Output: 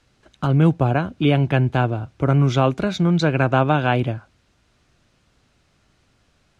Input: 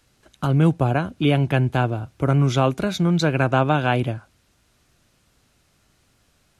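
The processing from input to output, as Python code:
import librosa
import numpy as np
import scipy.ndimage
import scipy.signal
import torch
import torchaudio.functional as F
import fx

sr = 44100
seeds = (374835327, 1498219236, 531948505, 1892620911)

y = fx.air_absorb(x, sr, metres=70.0)
y = y * librosa.db_to_amplitude(1.5)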